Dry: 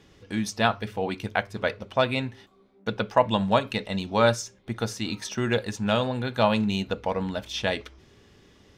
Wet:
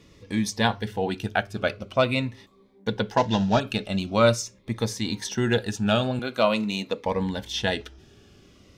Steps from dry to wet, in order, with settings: 3.17–3.6 CVSD 32 kbps; 6.19–7.06 HPF 260 Hz 12 dB/oct; cascading phaser falling 0.45 Hz; gain +3 dB

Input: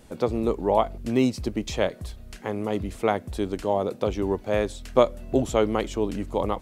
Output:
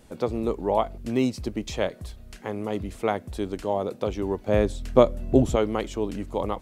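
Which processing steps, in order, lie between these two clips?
4.48–5.56 low shelf 460 Hz +9 dB; gain -2 dB

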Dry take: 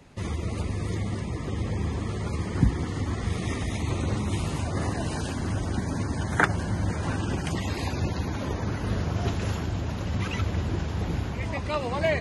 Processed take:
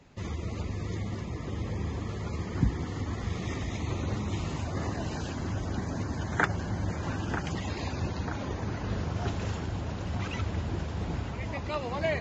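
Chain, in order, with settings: brick-wall FIR low-pass 7800 Hz; narrowing echo 0.941 s, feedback 72%, band-pass 770 Hz, level -8 dB; gain -4.5 dB

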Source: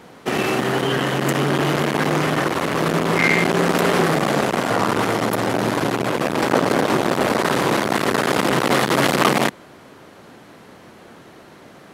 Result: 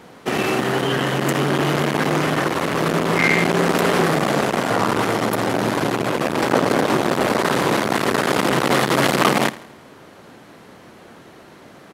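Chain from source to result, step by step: feedback echo 82 ms, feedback 47%, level -18.5 dB

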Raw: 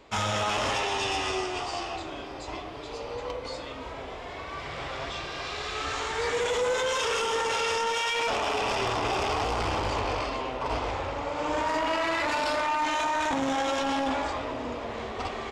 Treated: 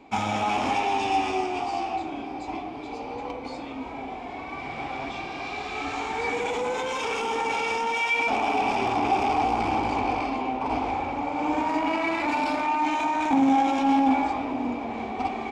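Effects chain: small resonant body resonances 260/770/2300 Hz, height 17 dB, ringing for 25 ms; gain -6.5 dB

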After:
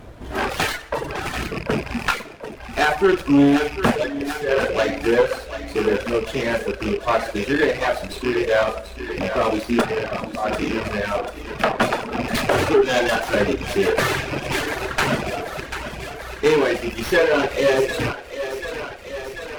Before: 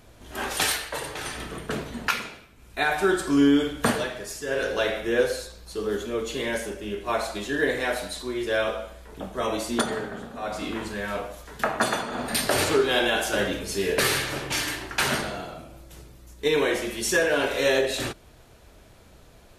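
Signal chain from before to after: rattling part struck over -38 dBFS, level -20 dBFS; high shelf 2500 Hz -10.5 dB; in parallel at -1 dB: compressor, threshold -36 dBFS, peak gain reduction 18.5 dB; on the sum: one-sided clip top -19 dBFS; on a send: thinning echo 0.74 s, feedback 72%, high-pass 300 Hz, level -8.5 dB; on the sum: reverb removal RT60 1.5 s; running maximum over 5 samples; gain +7.5 dB

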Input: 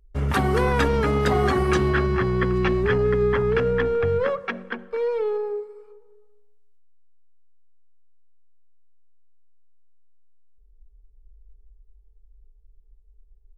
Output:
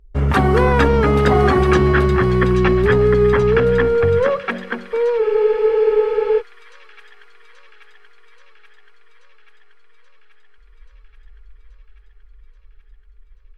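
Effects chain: high shelf 4600 Hz -10 dB; on a send: thin delay 0.831 s, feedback 69%, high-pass 2800 Hz, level -7 dB; on the sum: spectral freeze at 5.23, 1.17 s; gain +7 dB

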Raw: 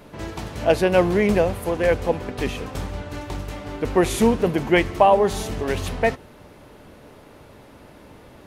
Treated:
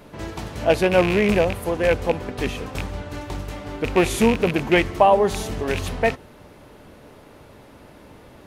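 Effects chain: rattling part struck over -23 dBFS, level -14 dBFS

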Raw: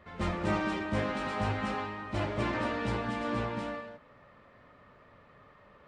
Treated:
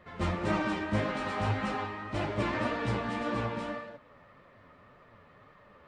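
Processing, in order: flange 1.8 Hz, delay 5.1 ms, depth 7.8 ms, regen +42%; gain +4.5 dB

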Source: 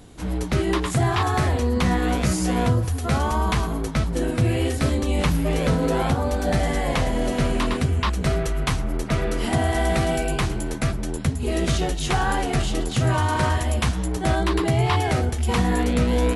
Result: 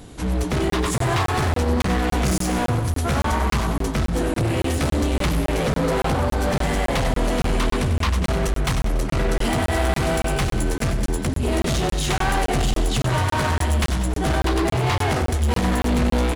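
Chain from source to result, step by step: overloaded stage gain 24 dB; feedback echo 95 ms, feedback 53%, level -9.5 dB; crackling interface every 0.28 s, samples 1024, zero, from 0.7; gain +5 dB

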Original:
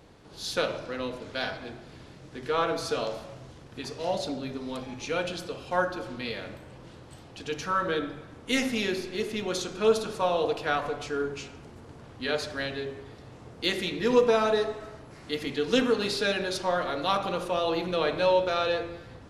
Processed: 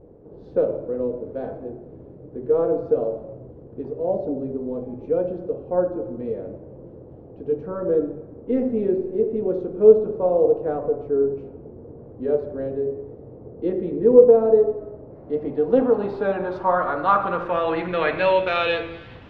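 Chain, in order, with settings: vibrato 0.78 Hz 38 cents; low-pass sweep 470 Hz -> 2900 Hz, 14.89–18.82; gain +3.5 dB

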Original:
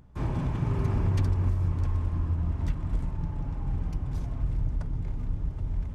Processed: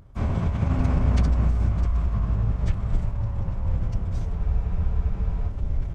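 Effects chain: formant-preserving pitch shift -7.5 st; spectral freeze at 4.41, 1.09 s; gain +6 dB

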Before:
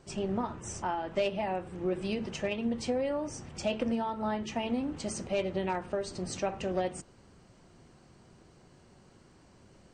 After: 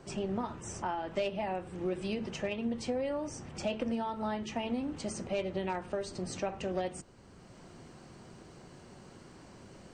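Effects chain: three-band squash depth 40%; gain -2.5 dB

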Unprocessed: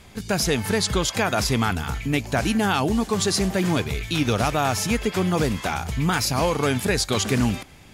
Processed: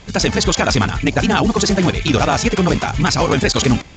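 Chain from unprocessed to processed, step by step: granular stretch 0.5×, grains 33 ms; gain +8 dB; A-law 128 kbps 16000 Hz

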